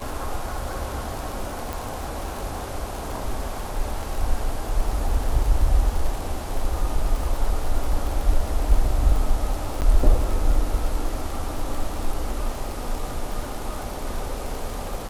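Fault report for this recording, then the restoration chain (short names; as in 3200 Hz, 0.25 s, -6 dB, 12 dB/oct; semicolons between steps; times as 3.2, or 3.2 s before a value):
crackle 42/s -27 dBFS
1.73 pop
9.81–9.82 gap 9.1 ms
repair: de-click; interpolate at 9.81, 9.1 ms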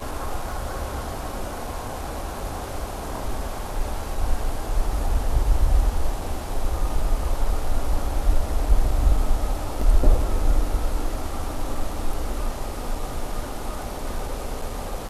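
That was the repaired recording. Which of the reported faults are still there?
none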